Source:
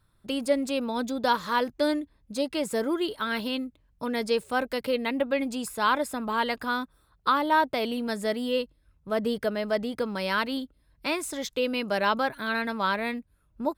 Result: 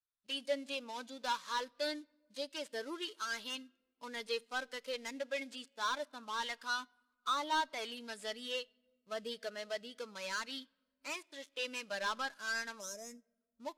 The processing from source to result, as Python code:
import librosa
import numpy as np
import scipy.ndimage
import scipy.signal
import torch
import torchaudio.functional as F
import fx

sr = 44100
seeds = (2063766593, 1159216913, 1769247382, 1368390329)

y = fx.dead_time(x, sr, dead_ms=0.14)
y = scipy.signal.sosfilt(scipy.signal.butter(2, 11000.0, 'lowpass', fs=sr, output='sos'), y)
y = librosa.effects.preemphasis(y, coef=0.97, zi=[0.0])
y = fx.spec_box(y, sr, start_s=12.8, length_s=0.53, low_hz=690.0, high_hz=5000.0, gain_db=-14)
y = fx.high_shelf(y, sr, hz=6400.0, db=-8.5)
y = 10.0 ** (-37.0 / 20.0) * np.tanh(y / 10.0 ** (-37.0 / 20.0))
y = fx.room_shoebox(y, sr, seeds[0], volume_m3=3900.0, walls='mixed', distance_m=0.31)
y = fx.spectral_expand(y, sr, expansion=1.5)
y = y * 10.0 ** (11.0 / 20.0)